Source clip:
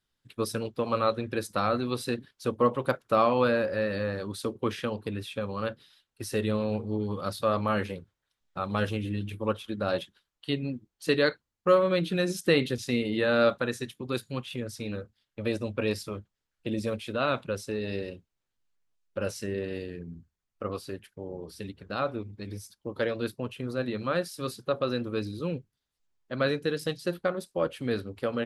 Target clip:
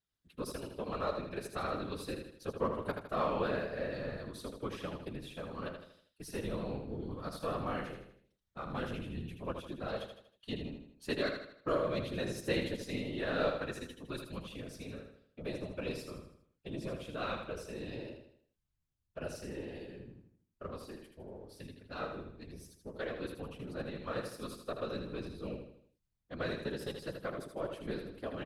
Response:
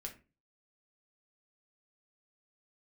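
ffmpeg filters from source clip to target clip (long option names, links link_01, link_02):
-af "aeval=exprs='if(lt(val(0),0),0.708*val(0),val(0))':channel_layout=same,afftfilt=real='hypot(re,im)*cos(2*PI*random(0))':imag='hypot(re,im)*sin(2*PI*random(1))':win_size=512:overlap=0.75,aecho=1:1:79|158|237|316|395:0.473|0.208|0.0916|0.0403|0.0177,volume=-3.5dB"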